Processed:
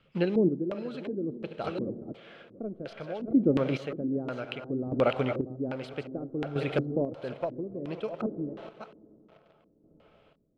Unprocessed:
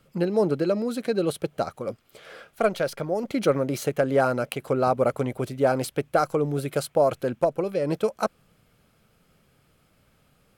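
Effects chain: chunks repeated in reverse 371 ms, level -9.5 dB; reverberation RT60 5.4 s, pre-delay 63 ms, DRR 14 dB; in parallel at -8 dB: bit crusher 7-bit; on the sum: LFO low-pass square 1.4 Hz 300–3000 Hz; vibrato 1.4 Hz 6.6 cents; square tremolo 0.61 Hz, depth 60%, duty 30%; trim -5.5 dB

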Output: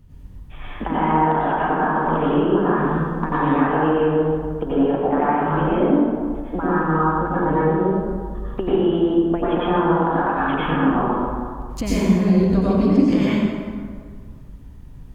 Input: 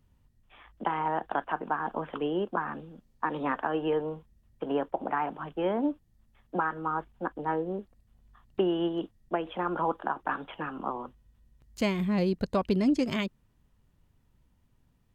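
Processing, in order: bass shelf 320 Hz +10.5 dB; compression 5:1, threshold -33 dBFS, peak gain reduction 16.5 dB; plate-style reverb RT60 1.9 s, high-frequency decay 0.55×, pre-delay 80 ms, DRR -9.5 dB; trim +7.5 dB

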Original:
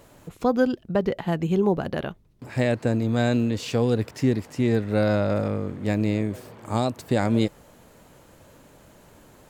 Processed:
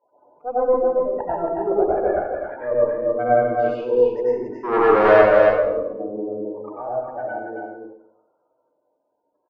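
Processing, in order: gate -50 dBFS, range -24 dB; de-hum 128.3 Hz, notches 3; spectral gate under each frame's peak -10 dB strong; high-order bell 700 Hz +14 dB 3 oct; 4.63–5.12 s: waveshaping leveller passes 3; slow attack 151 ms; band-pass sweep 990 Hz -> 6.3 kHz, 6.10–8.70 s; valve stage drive 8 dB, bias 0.7; on a send: delay 274 ms -4.5 dB; on the sum: plate-style reverb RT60 0.74 s, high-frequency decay 0.9×, pre-delay 80 ms, DRR -7.5 dB; trim +1.5 dB

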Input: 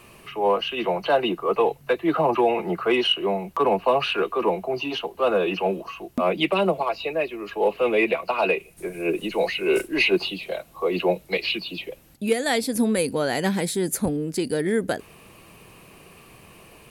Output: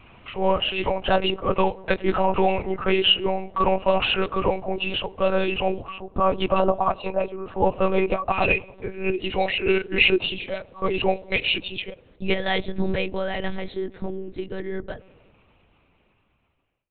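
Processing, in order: fade out at the end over 4.87 s; 6.00–8.32 s: resonant high shelf 1.5 kHz -6.5 dB, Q 3; feedback echo behind a low-pass 98 ms, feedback 69%, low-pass 1 kHz, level -22 dB; monotone LPC vocoder at 8 kHz 190 Hz; dynamic bell 2.9 kHz, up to +4 dB, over -41 dBFS, Q 1.6

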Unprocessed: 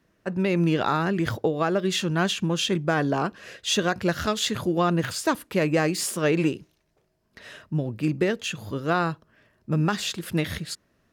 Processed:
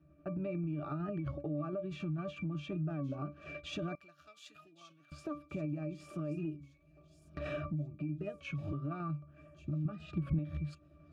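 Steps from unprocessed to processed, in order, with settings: recorder AGC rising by 14 dB/s; tremolo saw down 11 Hz, depth 40%; pitch-class resonator D, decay 0.18 s; compression 12:1, threshold -45 dBFS, peak gain reduction 20.5 dB; 3.95–5.12 s: differentiator; feedback echo behind a high-pass 1130 ms, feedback 35%, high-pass 4.7 kHz, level -9.5 dB; peak limiter -43 dBFS, peak gain reduction 8.5 dB; 9.85–10.39 s: tone controls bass +8 dB, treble -7 dB; warped record 33 1/3 rpm, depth 100 cents; trim +13 dB

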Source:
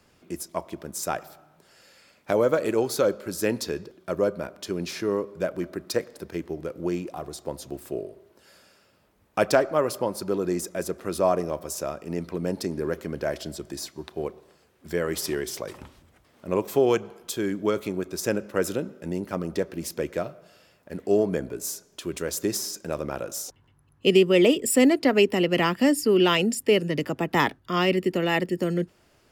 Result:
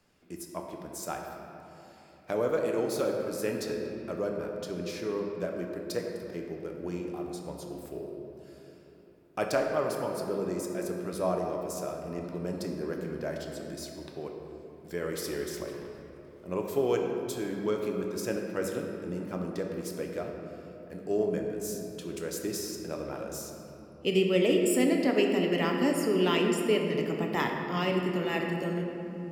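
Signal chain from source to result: simulated room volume 160 m³, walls hard, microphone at 0.38 m; trim -8.5 dB

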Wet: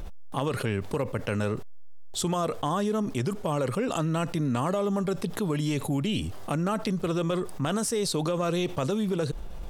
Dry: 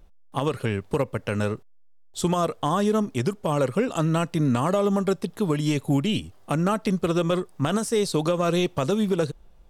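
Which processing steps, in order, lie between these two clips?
level flattener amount 70%; trim -6.5 dB

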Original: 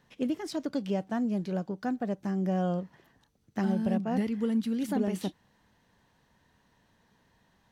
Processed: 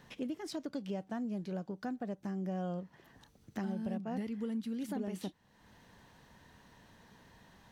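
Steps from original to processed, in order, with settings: compression 2:1, threshold -56 dBFS, peak gain reduction 17.5 dB; trim +7 dB

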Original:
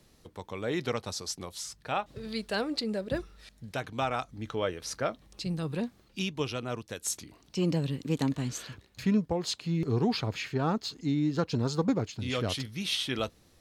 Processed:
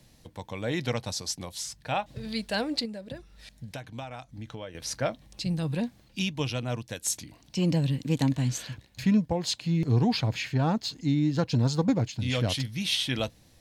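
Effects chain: graphic EQ with 31 bands 125 Hz +5 dB, 400 Hz -10 dB, 1.25 kHz -9 dB; 2.85–4.75 s: compression 6:1, threshold -40 dBFS, peak gain reduction 13.5 dB; trim +3.5 dB

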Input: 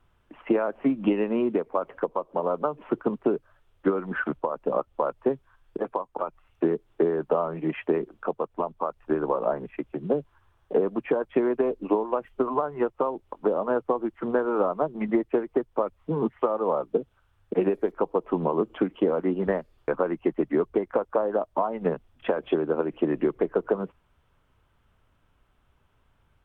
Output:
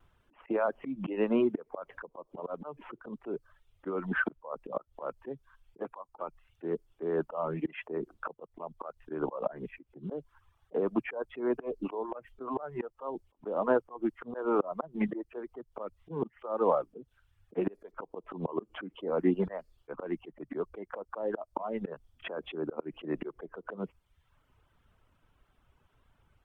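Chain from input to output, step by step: vibrato 1.7 Hz 34 cents; slow attack 195 ms; reverb removal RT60 0.78 s

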